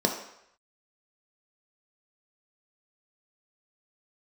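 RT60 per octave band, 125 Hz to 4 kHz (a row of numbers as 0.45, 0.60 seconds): 0.55, 0.55, 0.70, 0.75, 0.80, 0.70 seconds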